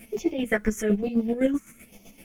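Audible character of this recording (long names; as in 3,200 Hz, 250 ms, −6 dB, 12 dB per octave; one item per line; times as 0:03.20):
phaser sweep stages 4, 1.1 Hz, lowest notch 670–1,500 Hz
a quantiser's noise floor 12 bits, dither triangular
chopped level 7.8 Hz, depth 60%, duty 35%
a shimmering, thickened sound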